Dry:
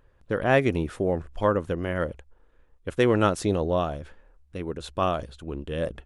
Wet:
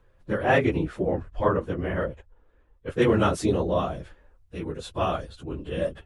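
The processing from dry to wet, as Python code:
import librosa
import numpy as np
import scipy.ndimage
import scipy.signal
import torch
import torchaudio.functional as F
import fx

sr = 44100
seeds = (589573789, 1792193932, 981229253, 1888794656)

y = fx.phase_scramble(x, sr, seeds[0], window_ms=50)
y = fx.high_shelf(y, sr, hz=5800.0, db=-11.5, at=(0.58, 3.02))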